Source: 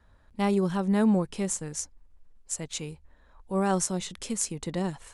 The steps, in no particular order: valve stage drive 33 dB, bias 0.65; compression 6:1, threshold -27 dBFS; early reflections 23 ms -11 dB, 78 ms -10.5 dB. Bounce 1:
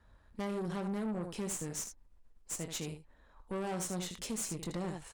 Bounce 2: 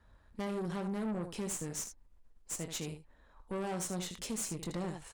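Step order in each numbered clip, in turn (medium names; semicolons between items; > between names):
early reflections > compression > valve stage; compression > early reflections > valve stage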